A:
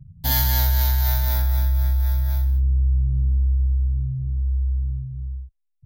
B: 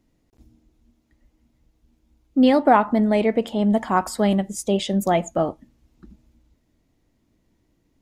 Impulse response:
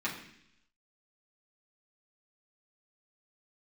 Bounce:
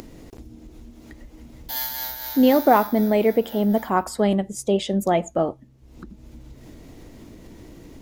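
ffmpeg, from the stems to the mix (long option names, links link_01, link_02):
-filter_complex "[0:a]highpass=450,adelay=1450,volume=-5.5dB[link_01];[1:a]equalizer=frequency=430:width_type=o:width=0.87:gain=4.5,acompressor=mode=upward:threshold=-38dB:ratio=2.5,volume=-2dB[link_02];[link_01][link_02]amix=inputs=2:normalize=0,acompressor=mode=upward:threshold=-32dB:ratio=2.5"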